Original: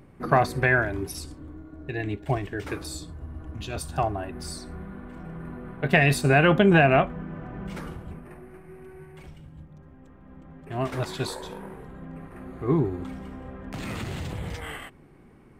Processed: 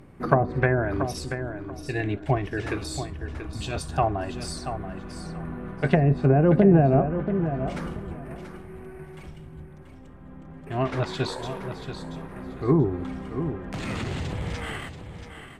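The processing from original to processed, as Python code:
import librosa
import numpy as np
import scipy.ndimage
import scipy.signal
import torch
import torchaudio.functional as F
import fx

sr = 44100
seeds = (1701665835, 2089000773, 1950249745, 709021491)

y = fx.env_lowpass_down(x, sr, base_hz=540.0, full_db=-15.5)
y = fx.echo_feedback(y, sr, ms=683, feedback_pct=21, wet_db=-9.5)
y = F.gain(torch.from_numpy(y), 2.5).numpy()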